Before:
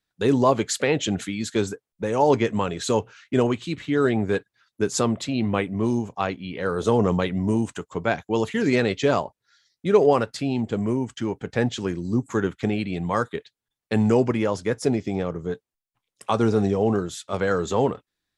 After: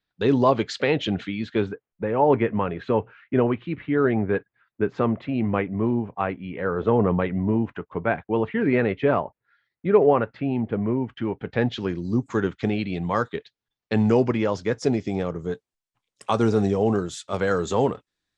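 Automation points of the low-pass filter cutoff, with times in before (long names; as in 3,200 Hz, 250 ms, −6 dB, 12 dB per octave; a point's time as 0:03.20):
low-pass filter 24 dB per octave
0:00.84 4,700 Hz
0:02.06 2,400 Hz
0:10.92 2,400 Hz
0:12.10 5,700 Hz
0:14.48 5,700 Hz
0:15.42 9,100 Hz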